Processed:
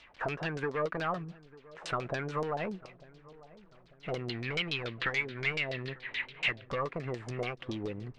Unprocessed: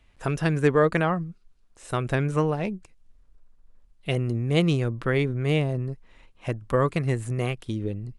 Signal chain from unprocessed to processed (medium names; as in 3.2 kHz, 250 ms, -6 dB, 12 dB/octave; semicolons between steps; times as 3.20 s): CVSD coder 64 kbps; 4.29–6.65 s: high-order bell 2.7 kHz +15.5 dB; compression 6:1, threshold -31 dBFS, peak gain reduction 18 dB; overdrive pedal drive 22 dB, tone 6.2 kHz, clips at -18 dBFS; LFO low-pass saw down 7 Hz 530–5500 Hz; filtered feedback delay 896 ms, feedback 56%, low-pass 830 Hz, level -19 dB; trim -7.5 dB